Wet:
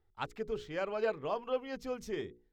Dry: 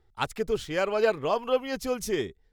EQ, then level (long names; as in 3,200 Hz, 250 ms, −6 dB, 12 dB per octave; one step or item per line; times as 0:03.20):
high-shelf EQ 5,300 Hz −11.5 dB
parametric band 10,000 Hz −9.5 dB 0.27 octaves
mains-hum notches 60/120/180/240/300/360/420/480 Hz
−8.5 dB